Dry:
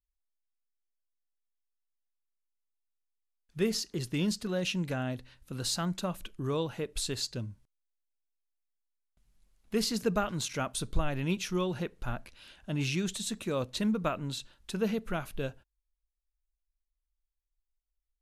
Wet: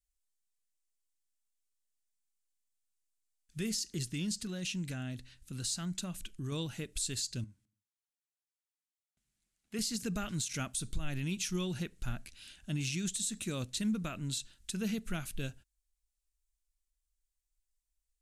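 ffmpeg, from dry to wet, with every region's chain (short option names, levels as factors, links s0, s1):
-filter_complex "[0:a]asettb=1/sr,asplit=3[s0][s1][s2];[s0]atrim=end=4.034[s3];[s1]atrim=start=4.03:end=6.52,asetpts=PTS-STARTPTS,afade=t=in:d=0.004:c=qsin,afade=t=out:st=2.486:d=0.004:c=qsin,acompressor=threshold=0.0141:ratio=1.5:attack=3.2:release=140:knee=1:detection=peak,highshelf=f=11000:g=-6[s4];[s2]atrim=start=6.516[s5];[s3][s4]acrossfade=d=0.004:c1=hsin:c2=qsin[s6];[s6][s5]acrossfade=d=0.004:c1=qsin:c2=hsin,asettb=1/sr,asplit=3[s7][s8][s9];[s7]atrim=end=7.444[s10];[s8]atrim=start=7.44:end=9.79,asetpts=PTS-STARTPTS,afade=t=in:d=0.004:c=qsin,afade=t=out:st=2.346:d=0.004:c=qsin,highpass=f=400:p=1,highshelf=f=3200:g=-11,aecho=1:1:72|144|216|288:0.075|0.0442|0.0261|0.0154,atrim=end_sample=103635[s11];[s9]atrim=start=9.786[s12];[s10][s11]acrossfade=d=0.004:c1=hsin:c2=qsin[s13];[s13][s12]acrossfade=d=0.004:c1=qsin:c2=hsin,equalizer=f=500:t=o:w=1:g=-10,equalizer=f=1000:t=o:w=1:g=-10,equalizer=f=8000:t=o:w=1:g=10,alimiter=level_in=1.19:limit=0.0631:level=0:latency=1:release=93,volume=0.841"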